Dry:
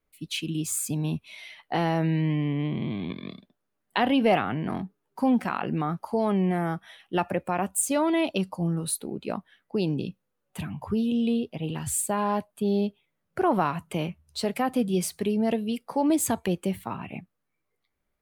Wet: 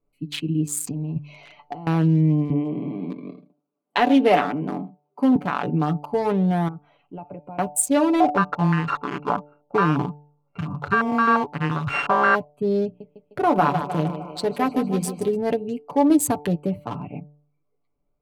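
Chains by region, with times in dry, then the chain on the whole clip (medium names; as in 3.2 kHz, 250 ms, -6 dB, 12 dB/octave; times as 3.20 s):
0.87–1.87 s: compressor with a negative ratio -32 dBFS, ratio -0.5 + careless resampling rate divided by 3×, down none, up filtered
2.50–5.36 s: high-pass 190 Hz 24 dB/octave + delay 78 ms -15.5 dB
6.68–7.58 s: distance through air 130 m + compression 2:1, threshold -45 dBFS
8.20–12.35 s: sorted samples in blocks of 32 samples + step-sequenced low-pass 5.7 Hz 740–2100 Hz
12.85–15.36 s: hum notches 60/120/180/240/300 Hz + thinning echo 153 ms, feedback 70%, high-pass 280 Hz, level -7 dB
whole clip: local Wiener filter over 25 samples; comb 6.9 ms, depth 66%; de-hum 147.2 Hz, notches 6; trim +4 dB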